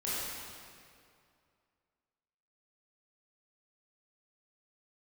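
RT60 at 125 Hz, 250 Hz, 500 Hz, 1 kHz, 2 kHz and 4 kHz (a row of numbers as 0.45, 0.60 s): 2.5, 2.3, 2.4, 2.3, 2.1, 1.8 s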